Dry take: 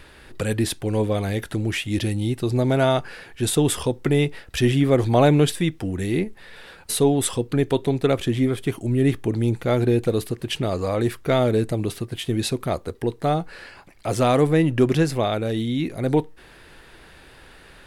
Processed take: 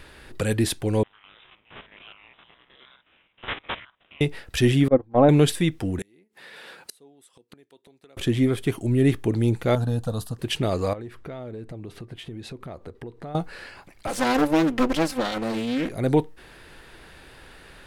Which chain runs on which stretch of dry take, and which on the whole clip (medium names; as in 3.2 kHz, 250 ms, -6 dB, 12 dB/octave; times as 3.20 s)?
1.03–4.21 s: spectrogram pixelated in time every 50 ms + inverse Chebyshev high-pass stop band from 1.3 kHz, stop band 80 dB + careless resampling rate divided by 6×, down none, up filtered
4.88–5.29 s: low-pass 1.1 kHz + gate -17 dBFS, range -29 dB + comb 3.8 ms, depth 41%
5.99–8.17 s: high-pass 210 Hz + inverted gate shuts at -21 dBFS, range -34 dB + tape noise reduction on one side only encoder only
9.75–10.39 s: treble shelf 11 kHz -6 dB + static phaser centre 910 Hz, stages 4
10.93–13.35 s: low-pass 2 kHz 6 dB/octave + compression 5:1, threshold -35 dBFS
14.07–15.89 s: comb filter that takes the minimum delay 3.8 ms + peaking EQ 93 Hz -11 dB 0.84 oct + loudspeaker Doppler distortion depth 0.6 ms
whole clip: none